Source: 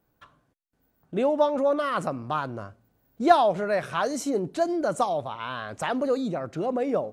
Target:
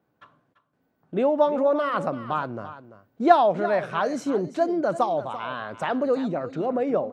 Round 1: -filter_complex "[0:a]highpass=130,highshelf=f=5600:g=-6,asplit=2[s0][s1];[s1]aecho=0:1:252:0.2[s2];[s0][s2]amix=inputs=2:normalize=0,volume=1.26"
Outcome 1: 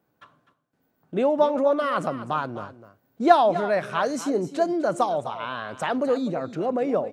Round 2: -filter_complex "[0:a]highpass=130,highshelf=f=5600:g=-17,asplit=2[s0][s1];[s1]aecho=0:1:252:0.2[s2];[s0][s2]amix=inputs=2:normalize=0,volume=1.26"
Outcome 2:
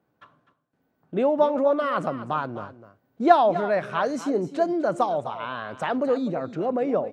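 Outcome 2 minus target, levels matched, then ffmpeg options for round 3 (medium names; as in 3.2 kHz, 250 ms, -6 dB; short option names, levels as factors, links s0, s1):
echo 88 ms early
-filter_complex "[0:a]highpass=130,highshelf=f=5600:g=-17,asplit=2[s0][s1];[s1]aecho=0:1:340:0.2[s2];[s0][s2]amix=inputs=2:normalize=0,volume=1.26"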